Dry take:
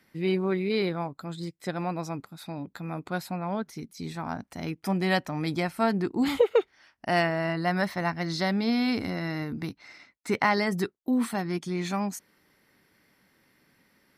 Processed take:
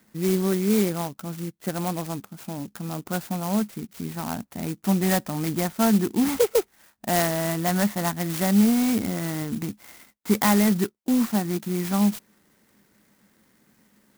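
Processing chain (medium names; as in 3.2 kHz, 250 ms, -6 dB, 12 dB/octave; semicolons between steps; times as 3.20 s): saturation -12.5 dBFS, distortion -23 dB; peaking EQ 210 Hz +10.5 dB 0.2 oct; sampling jitter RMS 0.09 ms; trim +2.5 dB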